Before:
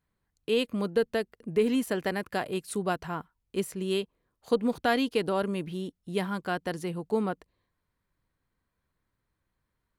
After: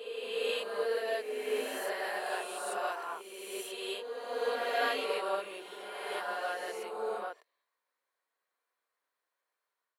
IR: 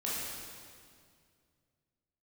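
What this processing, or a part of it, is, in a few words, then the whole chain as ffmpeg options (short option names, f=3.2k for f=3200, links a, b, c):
ghost voice: -filter_complex "[0:a]areverse[a];[1:a]atrim=start_sample=2205[b];[a][b]afir=irnorm=-1:irlink=0,areverse,highpass=f=500:w=0.5412,highpass=f=500:w=1.3066,volume=-6dB"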